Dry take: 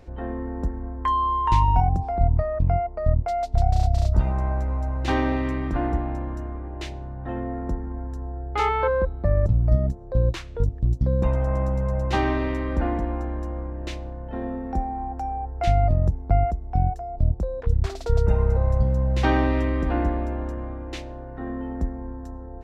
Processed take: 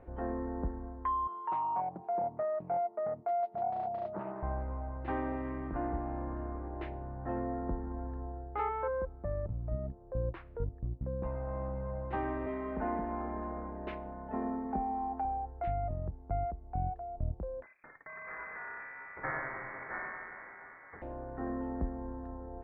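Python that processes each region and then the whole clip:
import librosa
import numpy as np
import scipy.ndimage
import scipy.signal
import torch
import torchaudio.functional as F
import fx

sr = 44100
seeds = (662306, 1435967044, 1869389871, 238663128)

y = fx.chain(x, sr, fx.highpass(hz=200.0, slope=24),
    fx.notch_comb(f0_hz=260.0),
    fx.doppler_dist(depth_ms=0.23), at=(1.27, 4.43))
y = fx.chain(y, sr, fx.highpass(hz=140.0, slope=6),
    fx.comb(ms=4.7, depth=0.93), at=(12.46, 15.25))
y = fx.chain(y, sr, fx.lower_of_two(delay_ms=0.32),
    fx.highpass(hz=750.0, slope=12),
    fx.freq_invert(carrier_hz=2500), at=(17.63, 21.02))
y = fx.rider(y, sr, range_db=5, speed_s=0.5)
y = scipy.signal.sosfilt(scipy.signal.bessel(4, 1300.0, 'lowpass', norm='mag', fs=sr, output='sos'), y)
y = fx.low_shelf(y, sr, hz=300.0, db=-8.5)
y = y * librosa.db_to_amplitude(-5.5)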